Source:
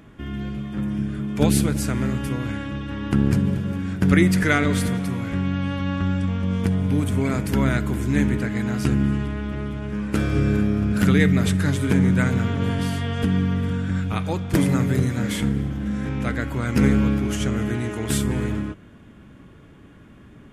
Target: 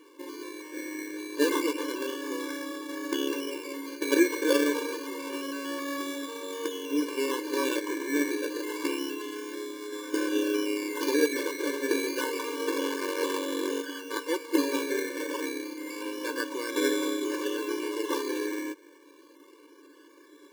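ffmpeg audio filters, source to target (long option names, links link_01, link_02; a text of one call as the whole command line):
ffmpeg -i in.wav -filter_complex "[0:a]acrusher=samples=17:mix=1:aa=0.000001:lfo=1:lforange=10.2:lforate=0.28,asettb=1/sr,asplit=3[link_01][link_02][link_03];[link_01]atrim=end=12.684[link_04];[link_02]atrim=start=12.68:end=13.82,asetpts=PTS-STARTPTS,afade=type=in:duration=0.004:curve=qsin,afade=type=out:start_time=1.136:duration=0.004:curve=qsin,aeval=exprs='0.316*(cos(1*acos(clip(val(0)/0.316,-1,1)))-cos(1*PI/2))+0.0631*(cos(8*acos(clip(val(0)/0.316,-1,1)))-cos(8*PI/2))':channel_layout=same[link_05];[link_03]atrim=start=13.816[link_06];[link_04][link_05]acrossfade=duration=0.004:curve1=hsin:curve2=qsin[link_07];[link_07][link_06]acrossfade=duration=0.004:curve1=qsin:curve2=hsin,afftfilt=real='re*eq(mod(floor(b*sr/1024/300),2),1)':imag='im*eq(mod(floor(b*sr/1024/300),2),1)':win_size=1024:overlap=0.75" out.wav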